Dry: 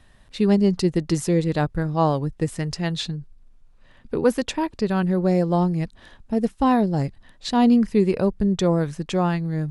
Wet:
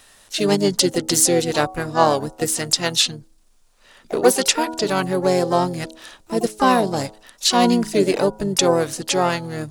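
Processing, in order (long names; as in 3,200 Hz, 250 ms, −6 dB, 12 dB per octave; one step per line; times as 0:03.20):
bass and treble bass −15 dB, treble +13 dB
hum removal 107.1 Hz, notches 9
pitch-shifted copies added −5 semitones −9 dB, +7 semitones −11 dB
level +5.5 dB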